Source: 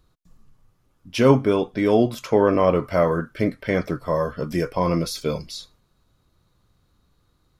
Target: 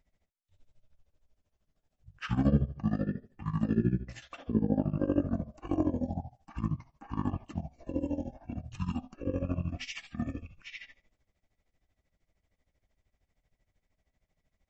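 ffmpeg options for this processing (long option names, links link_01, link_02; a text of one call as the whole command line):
ffmpeg -i in.wav -af "tremolo=f=25:d=0.824,asetrate=22800,aresample=44100,volume=-8dB" out.wav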